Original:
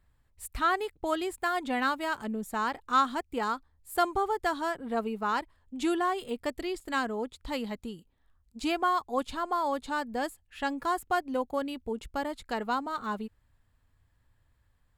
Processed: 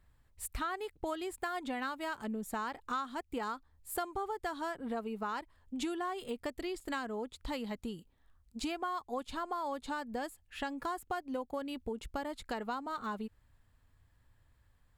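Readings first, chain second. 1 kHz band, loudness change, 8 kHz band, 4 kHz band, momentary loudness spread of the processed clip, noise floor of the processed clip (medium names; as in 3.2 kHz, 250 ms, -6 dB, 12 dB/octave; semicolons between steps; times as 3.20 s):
-8.5 dB, -8.0 dB, -2.5 dB, -6.5 dB, 4 LU, -70 dBFS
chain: compression 5:1, threshold -36 dBFS, peak gain reduction 15 dB; trim +1 dB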